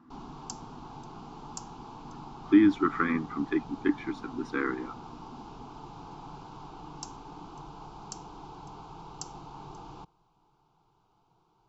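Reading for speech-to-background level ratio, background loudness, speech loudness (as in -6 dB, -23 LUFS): 17.5 dB, -45.5 LUFS, -28.0 LUFS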